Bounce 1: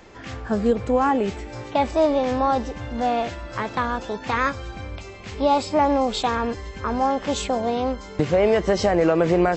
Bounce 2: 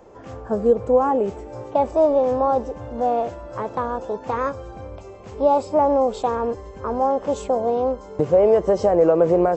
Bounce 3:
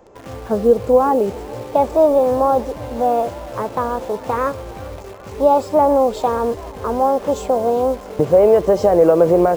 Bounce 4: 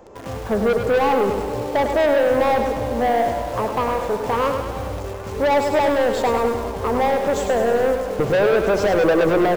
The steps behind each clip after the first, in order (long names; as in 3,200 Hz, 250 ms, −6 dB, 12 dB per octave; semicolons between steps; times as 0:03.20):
octave-band graphic EQ 125/500/1,000/2,000/4,000 Hz +3/+10/+5/−8/−8 dB; level −5.5 dB
in parallel at −5 dB: bit-depth reduction 6 bits, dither none; on the sum: feedback echo with a swinging delay time 406 ms, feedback 75%, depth 139 cents, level −23.5 dB
soft clipping −17.5 dBFS, distortion −7 dB; repeating echo 102 ms, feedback 60%, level −7 dB; level +2.5 dB